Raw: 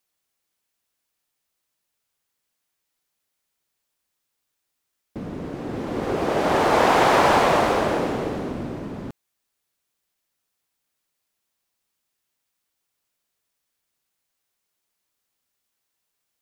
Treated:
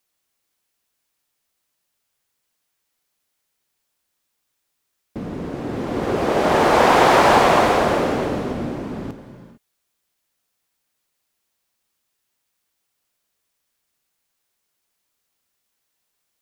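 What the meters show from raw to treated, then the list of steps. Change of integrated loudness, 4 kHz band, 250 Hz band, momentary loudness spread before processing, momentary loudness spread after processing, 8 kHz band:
+3.5 dB, +3.5 dB, +3.5 dB, 18 LU, 18 LU, +3.5 dB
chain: gated-style reverb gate 480 ms flat, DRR 8.5 dB; trim +3 dB

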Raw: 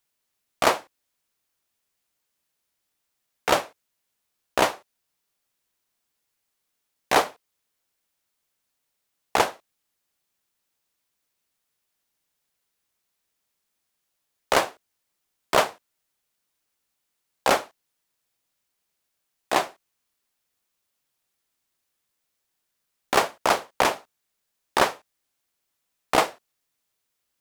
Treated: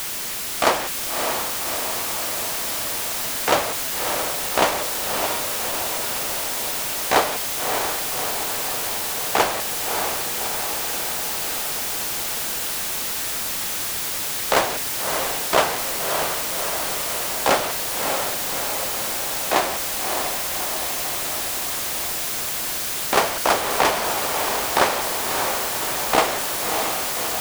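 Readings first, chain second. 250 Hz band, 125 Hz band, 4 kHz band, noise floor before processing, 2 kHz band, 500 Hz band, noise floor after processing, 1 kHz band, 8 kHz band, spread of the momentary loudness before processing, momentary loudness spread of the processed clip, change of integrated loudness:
+5.0 dB, +8.0 dB, +9.5 dB, -79 dBFS, +6.5 dB, +4.5 dB, -26 dBFS, +5.0 dB, +15.0 dB, 9 LU, 4 LU, +3.0 dB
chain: jump at every zero crossing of -22 dBFS; on a send: echo that smears into a reverb 611 ms, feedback 70%, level -5 dB

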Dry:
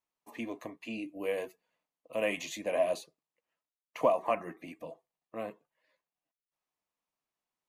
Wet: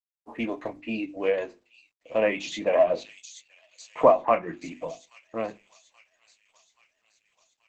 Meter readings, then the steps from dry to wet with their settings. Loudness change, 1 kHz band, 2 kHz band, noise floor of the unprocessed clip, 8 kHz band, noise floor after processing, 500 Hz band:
+7.5 dB, +9.0 dB, +6.0 dB, under -85 dBFS, +3.5 dB, -79 dBFS, +8.5 dB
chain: spectral sustain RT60 0.32 s; reverb removal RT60 0.67 s; hum notches 50/100/150/200/250/300/350 Hz; in parallel at -10.5 dB: saturation -28.5 dBFS, distortion -7 dB; on the sum: level-controlled noise filter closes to 600 Hz, open at -30 dBFS; feedback echo behind a high-pass 830 ms, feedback 58%, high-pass 5.5 kHz, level -5 dB; companded quantiser 8-bit; low-pass that closes with the level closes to 2 kHz, closed at -26 dBFS; trim +7.5 dB; Opus 12 kbps 48 kHz

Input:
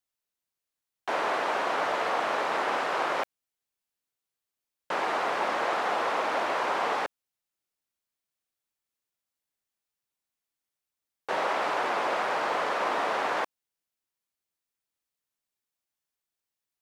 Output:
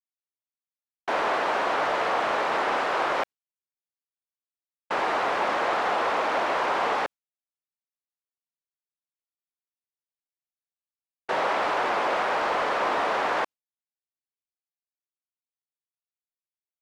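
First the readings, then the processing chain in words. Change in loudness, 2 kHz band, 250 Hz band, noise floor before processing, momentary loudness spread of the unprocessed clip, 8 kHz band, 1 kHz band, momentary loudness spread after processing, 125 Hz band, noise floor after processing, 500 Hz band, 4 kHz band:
+3.0 dB, +3.0 dB, +3.0 dB, under -85 dBFS, 5 LU, 0.0 dB, +3.0 dB, 5 LU, no reading, under -85 dBFS, +3.0 dB, +2.5 dB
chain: gate with hold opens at -22 dBFS; waveshaping leveller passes 1; treble shelf 8.9 kHz -9 dB

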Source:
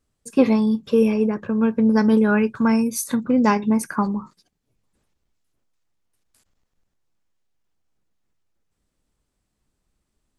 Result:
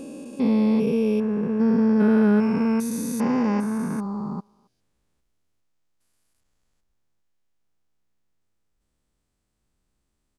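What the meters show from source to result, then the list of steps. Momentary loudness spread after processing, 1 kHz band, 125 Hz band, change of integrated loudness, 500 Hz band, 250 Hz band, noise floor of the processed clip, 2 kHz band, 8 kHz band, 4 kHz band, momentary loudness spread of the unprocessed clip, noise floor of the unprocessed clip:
11 LU, -6.5 dB, 0.0 dB, -2.5 dB, -3.5 dB, -2.0 dB, -76 dBFS, -6.5 dB, -7.0 dB, no reading, 7 LU, -77 dBFS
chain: spectrogram pixelated in time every 400 ms; speakerphone echo 270 ms, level -26 dB

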